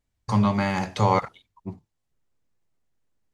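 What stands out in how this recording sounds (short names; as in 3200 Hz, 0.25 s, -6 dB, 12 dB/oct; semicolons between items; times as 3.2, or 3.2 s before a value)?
noise floor -79 dBFS; spectral tilt -6.0 dB/oct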